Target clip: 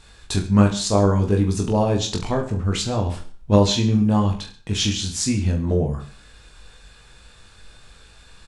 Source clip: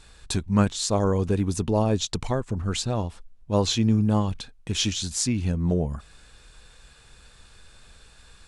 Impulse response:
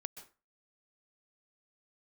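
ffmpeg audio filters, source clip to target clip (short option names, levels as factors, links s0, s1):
-filter_complex "[0:a]asettb=1/sr,asplit=3[s0][s1][s2];[s0]atrim=end=3.064[s3];[s1]atrim=start=3.06:end=3.56,asetpts=PTS-STARTPTS,afade=t=in:d=0.004:c=qsin,afade=t=out:st=0.496:d=0.004:c=qsin,acontrast=55[s4];[s2]atrim=start=3.556[s5];[s3][s4]acrossfade=d=0.004:c1=hsin:c2=qsin[s6];[s6][s5]acrossfade=d=0.004:c1=qsin:c2=hsin,aecho=1:1:20|43|69.45|99.87|134.8:0.631|0.398|0.251|0.158|0.1,asplit=2[s7][s8];[1:a]atrim=start_sample=2205,lowpass=7500[s9];[s8][s9]afir=irnorm=-1:irlink=0,volume=0.596[s10];[s7][s10]amix=inputs=2:normalize=0,volume=0.891"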